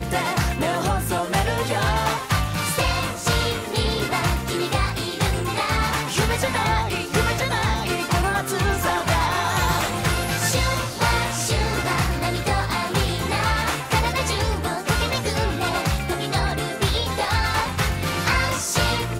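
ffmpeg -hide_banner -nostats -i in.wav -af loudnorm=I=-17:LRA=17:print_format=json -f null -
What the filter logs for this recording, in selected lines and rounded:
"input_i" : "-22.2",
"input_tp" : "-8.8",
"input_lra" : "1.1",
"input_thresh" : "-32.2",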